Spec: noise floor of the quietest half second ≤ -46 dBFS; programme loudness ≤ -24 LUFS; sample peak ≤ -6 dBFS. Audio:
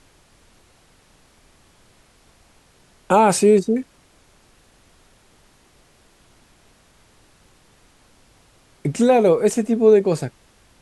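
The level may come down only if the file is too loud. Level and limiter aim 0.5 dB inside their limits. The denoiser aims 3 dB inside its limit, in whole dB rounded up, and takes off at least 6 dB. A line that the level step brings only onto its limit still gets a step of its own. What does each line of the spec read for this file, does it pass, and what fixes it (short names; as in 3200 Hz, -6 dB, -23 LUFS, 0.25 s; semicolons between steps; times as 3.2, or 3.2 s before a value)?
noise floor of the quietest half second -55 dBFS: OK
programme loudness -17.0 LUFS: fail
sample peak -3.5 dBFS: fail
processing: gain -7.5 dB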